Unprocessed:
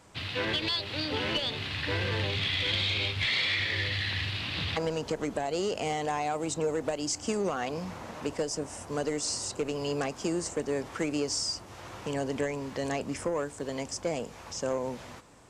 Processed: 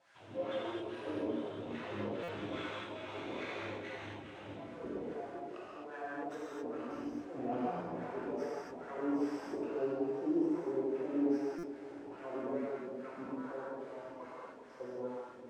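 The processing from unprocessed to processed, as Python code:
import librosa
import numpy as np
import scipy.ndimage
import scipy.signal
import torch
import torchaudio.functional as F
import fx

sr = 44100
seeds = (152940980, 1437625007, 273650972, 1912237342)

y = fx.lower_of_two(x, sr, delay_ms=0.34)
y = fx.doppler_pass(y, sr, speed_mps=16, closest_m=14.0, pass_at_s=5.24)
y = fx.tilt_shelf(y, sr, db=4.0, hz=1300.0)
y = fx.over_compress(y, sr, threshold_db=-42.0, ratio=-1.0)
y = fx.chopper(y, sr, hz=0.69, depth_pct=65, duty_pct=85)
y = fx.dmg_noise_band(y, sr, seeds[0], low_hz=1400.0, high_hz=9600.0, level_db=-62.0)
y = fx.filter_lfo_bandpass(y, sr, shape='sine', hz=2.4, low_hz=280.0, high_hz=1500.0, q=3.6)
y = fx.echo_wet_lowpass(y, sr, ms=389, feedback_pct=62, hz=2900.0, wet_db=-13.0)
y = fx.rev_gated(y, sr, seeds[1], gate_ms=290, shape='flat', drr_db=-8.0)
y = fx.buffer_glitch(y, sr, at_s=(2.23, 11.58), block=256, repeats=8)
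y = y * librosa.db_to_amplitude(4.5)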